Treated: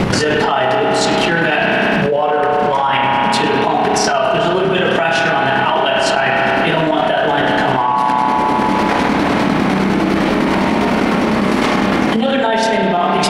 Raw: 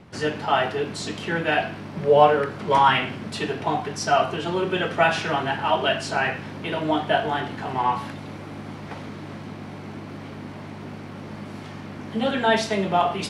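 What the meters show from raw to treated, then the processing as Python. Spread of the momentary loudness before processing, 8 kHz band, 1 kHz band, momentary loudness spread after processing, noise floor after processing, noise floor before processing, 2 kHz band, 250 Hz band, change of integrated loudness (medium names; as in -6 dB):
18 LU, +12.0 dB, +9.5 dB, 1 LU, -16 dBFS, -38 dBFS, +11.0 dB, +14.0 dB, +8.5 dB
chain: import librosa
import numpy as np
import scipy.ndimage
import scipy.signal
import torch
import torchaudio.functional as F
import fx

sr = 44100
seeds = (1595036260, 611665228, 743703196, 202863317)

y = fx.hum_notches(x, sr, base_hz=50, count=3)
y = fx.chopper(y, sr, hz=9.9, depth_pct=60, duty_pct=40)
y = fx.rev_spring(y, sr, rt60_s=2.7, pass_ms=(31,), chirp_ms=30, drr_db=3.5)
y = fx.env_flatten(y, sr, amount_pct=100)
y = F.gain(torch.from_numpy(y), -2.5).numpy()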